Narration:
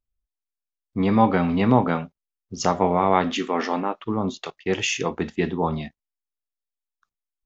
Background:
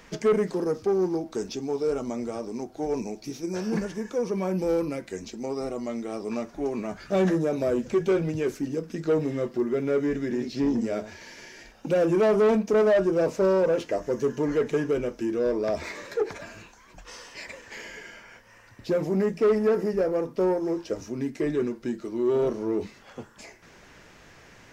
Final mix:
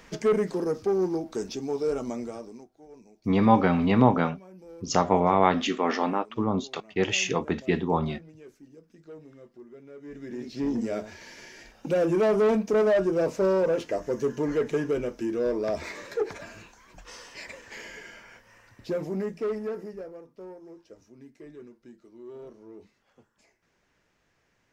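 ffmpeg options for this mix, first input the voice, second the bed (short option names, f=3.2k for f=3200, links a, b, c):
-filter_complex "[0:a]adelay=2300,volume=-1.5dB[a];[1:a]volume=19dB,afade=t=out:st=2.1:d=0.6:silence=0.0944061,afade=t=in:st=10:d=0.88:silence=0.1,afade=t=out:st=18.28:d=1.94:silence=0.125893[b];[a][b]amix=inputs=2:normalize=0"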